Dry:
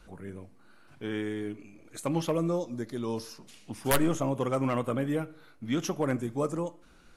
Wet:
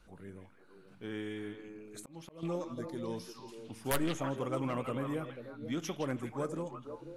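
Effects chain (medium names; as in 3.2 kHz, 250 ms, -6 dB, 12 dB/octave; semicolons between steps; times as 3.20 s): repeats whose band climbs or falls 163 ms, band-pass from 3 kHz, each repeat -1.4 oct, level -1 dB; 1.98–2.43 s: slow attack 488 ms; trim -7 dB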